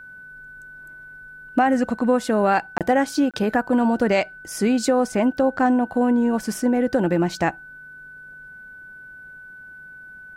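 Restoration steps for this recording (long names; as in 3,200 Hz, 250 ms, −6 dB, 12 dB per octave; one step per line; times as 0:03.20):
notch filter 1,500 Hz, Q 30
repair the gap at 0:02.78/0:03.31, 27 ms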